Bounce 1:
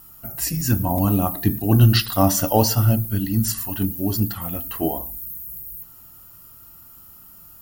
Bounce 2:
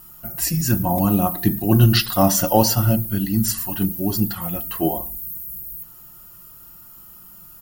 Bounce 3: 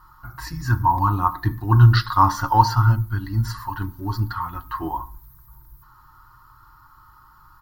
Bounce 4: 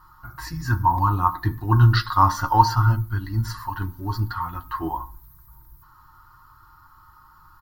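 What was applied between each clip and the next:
comb 5.6 ms, depth 48%; trim +1 dB
FFT filter 120 Hz 0 dB, 190 Hz -22 dB, 280 Hz -8 dB, 650 Hz -24 dB, 950 Hz +11 dB, 1.7 kHz 0 dB, 2.7 kHz -19 dB, 4.2 kHz -7 dB, 7.8 kHz -25 dB; trim +3 dB
doubling 12 ms -11 dB; trim -1 dB

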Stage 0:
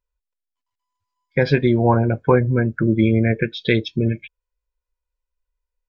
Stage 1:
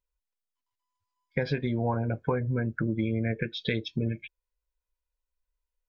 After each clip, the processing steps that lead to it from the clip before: band-stop 360 Hz, Q 12; compression 4:1, threshold -21 dBFS, peak gain reduction 9.5 dB; trim -4.5 dB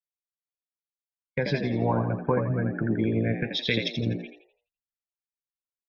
frequency-shifting echo 84 ms, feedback 51%, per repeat +61 Hz, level -6 dB; three bands expanded up and down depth 100%; trim +1.5 dB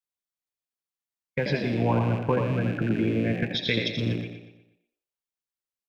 rattle on loud lows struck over -34 dBFS, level -31 dBFS; feedback delay 120 ms, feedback 41%, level -9 dB

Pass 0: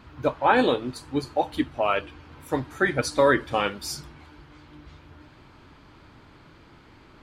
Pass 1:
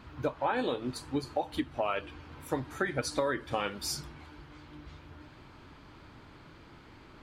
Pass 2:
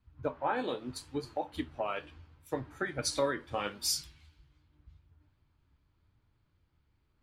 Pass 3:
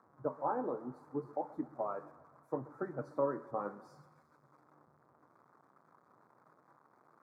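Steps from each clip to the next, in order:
compression 6:1, threshold -26 dBFS, peak gain reduction 11.5 dB; trim -1.5 dB
flange 0.79 Hz, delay 8.3 ms, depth 6.7 ms, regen +70%; three bands expanded up and down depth 100%
zero-crossing glitches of -29.5 dBFS; elliptic band-pass 140–1200 Hz, stop band 40 dB; thinning echo 130 ms, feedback 65%, high-pass 390 Hz, level -18 dB; trim -2 dB

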